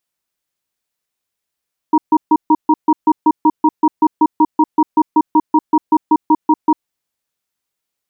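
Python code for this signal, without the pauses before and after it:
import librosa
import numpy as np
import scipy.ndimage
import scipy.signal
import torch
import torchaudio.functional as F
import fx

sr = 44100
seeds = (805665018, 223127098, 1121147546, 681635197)

y = fx.cadence(sr, length_s=4.8, low_hz=309.0, high_hz=945.0, on_s=0.05, off_s=0.14, level_db=-9.5)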